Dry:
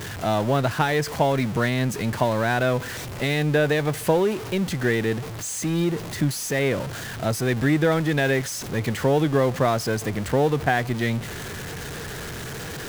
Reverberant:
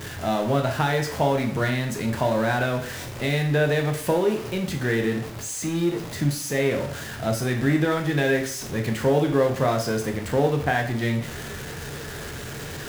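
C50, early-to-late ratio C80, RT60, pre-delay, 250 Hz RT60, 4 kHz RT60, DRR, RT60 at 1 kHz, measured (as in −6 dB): 8.5 dB, 13.0 dB, 0.50 s, 6 ms, 0.50 s, 0.45 s, 3.0 dB, 0.50 s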